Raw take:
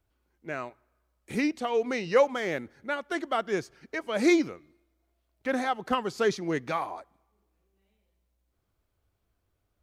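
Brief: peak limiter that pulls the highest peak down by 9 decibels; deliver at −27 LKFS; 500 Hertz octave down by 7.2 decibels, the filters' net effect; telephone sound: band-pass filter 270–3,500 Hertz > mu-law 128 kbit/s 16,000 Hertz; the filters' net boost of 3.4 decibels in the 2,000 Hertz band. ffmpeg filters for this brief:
ffmpeg -i in.wav -af "equalizer=frequency=500:width_type=o:gain=-8.5,equalizer=frequency=2000:width_type=o:gain=5,alimiter=limit=-22dB:level=0:latency=1,highpass=270,lowpass=3500,volume=7.5dB" -ar 16000 -c:a pcm_mulaw out.wav

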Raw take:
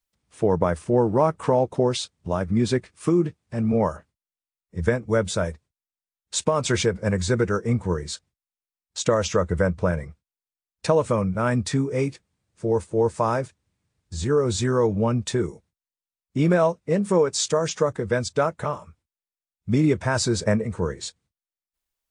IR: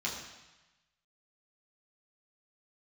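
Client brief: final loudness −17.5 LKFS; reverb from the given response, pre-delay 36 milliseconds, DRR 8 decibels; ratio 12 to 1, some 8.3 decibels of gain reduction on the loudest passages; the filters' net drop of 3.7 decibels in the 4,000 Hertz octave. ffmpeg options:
-filter_complex "[0:a]equalizer=frequency=4000:width_type=o:gain=-4.5,acompressor=threshold=-23dB:ratio=12,asplit=2[link_01][link_02];[1:a]atrim=start_sample=2205,adelay=36[link_03];[link_02][link_03]afir=irnorm=-1:irlink=0,volume=-12.5dB[link_04];[link_01][link_04]amix=inputs=2:normalize=0,volume=11.5dB"

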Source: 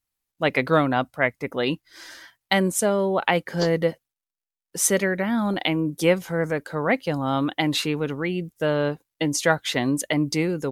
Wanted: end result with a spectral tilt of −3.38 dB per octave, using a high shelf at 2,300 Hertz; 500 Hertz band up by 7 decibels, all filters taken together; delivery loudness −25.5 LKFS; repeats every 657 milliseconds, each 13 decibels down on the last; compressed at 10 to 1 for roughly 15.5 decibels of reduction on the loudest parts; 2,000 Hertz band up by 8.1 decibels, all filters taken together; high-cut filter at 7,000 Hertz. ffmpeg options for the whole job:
ffmpeg -i in.wav -af "lowpass=7000,equalizer=frequency=500:width_type=o:gain=7.5,equalizer=frequency=2000:width_type=o:gain=5,highshelf=frequency=2300:gain=8.5,acompressor=threshold=-24dB:ratio=10,aecho=1:1:657|1314|1971:0.224|0.0493|0.0108,volume=3dB" out.wav

